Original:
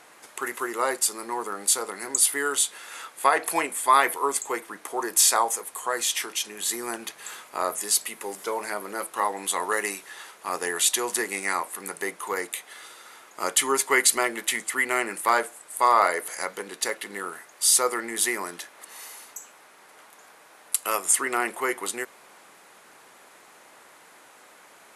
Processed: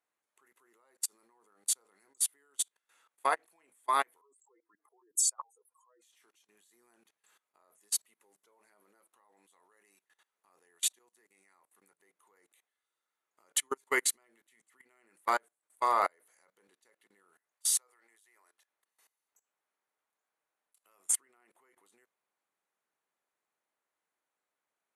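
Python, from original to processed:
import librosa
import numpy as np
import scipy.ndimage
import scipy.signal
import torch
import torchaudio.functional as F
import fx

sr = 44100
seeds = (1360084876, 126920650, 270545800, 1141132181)

y = fx.spec_expand(x, sr, power=2.9, at=(4.21, 6.02))
y = fx.highpass(y, sr, hz=580.0, slope=12, at=(17.53, 18.7))
y = fx.edit(y, sr, fx.fade_in_from(start_s=10.99, length_s=0.89, floor_db=-12.0), tone=tone)
y = fx.level_steps(y, sr, step_db=21)
y = fx.notch(y, sr, hz=5000.0, q=10.0)
y = fx.upward_expand(y, sr, threshold_db=-35.0, expansion=2.5)
y = y * 10.0 ** (-4.0 / 20.0)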